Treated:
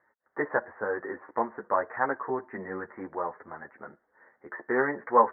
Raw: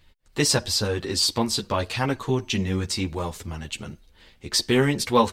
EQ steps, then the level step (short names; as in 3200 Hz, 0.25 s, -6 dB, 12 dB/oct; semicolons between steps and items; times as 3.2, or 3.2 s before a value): HPF 550 Hz 12 dB/oct; steep low-pass 1900 Hz 96 dB/oct; +1.5 dB